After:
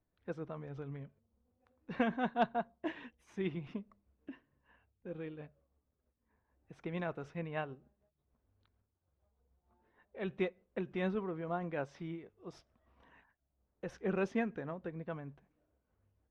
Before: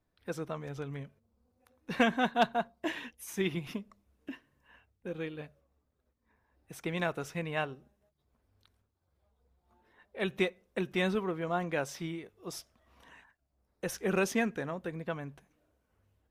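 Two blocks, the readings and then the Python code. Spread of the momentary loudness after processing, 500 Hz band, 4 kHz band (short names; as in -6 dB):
19 LU, -5.0 dB, -13.0 dB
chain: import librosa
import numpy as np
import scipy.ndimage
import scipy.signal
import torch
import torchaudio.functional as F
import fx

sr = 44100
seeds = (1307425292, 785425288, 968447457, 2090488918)

y = x * (1.0 - 0.31 / 2.0 + 0.31 / 2.0 * np.cos(2.0 * np.pi * 6.6 * (np.arange(len(x)) / sr)))
y = fx.spacing_loss(y, sr, db_at_10k=29)
y = y * 10.0 ** (-2.0 / 20.0)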